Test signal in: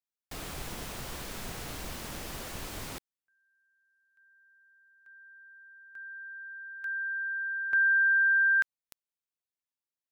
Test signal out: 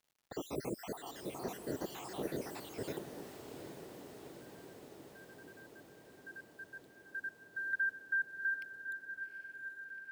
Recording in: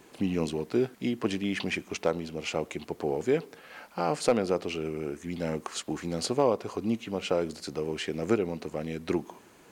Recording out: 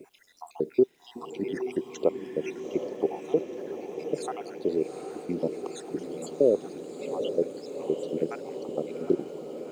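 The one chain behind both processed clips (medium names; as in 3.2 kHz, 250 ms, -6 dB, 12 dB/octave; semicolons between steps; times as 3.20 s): random holes in the spectrogram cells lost 71%; high-pass 150 Hz 12 dB/octave; in parallel at +1 dB: compression, threshold -37 dBFS; on the sum: word length cut 10-bit, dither none; FFT filter 190 Hz 0 dB, 390 Hz +8 dB, 1.3 kHz -8 dB; crackle 180 per s -59 dBFS; on a send: echo that smears into a reverb 782 ms, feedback 71%, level -8 dB; on the sum: trim -2 dB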